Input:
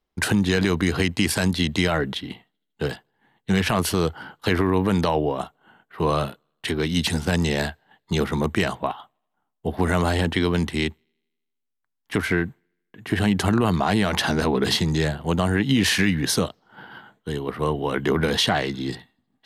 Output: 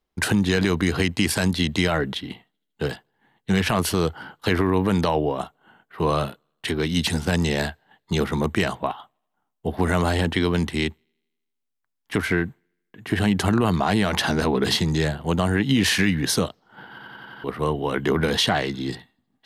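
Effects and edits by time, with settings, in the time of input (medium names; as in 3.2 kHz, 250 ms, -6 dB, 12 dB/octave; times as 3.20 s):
16.90 s: stutter in place 0.09 s, 6 plays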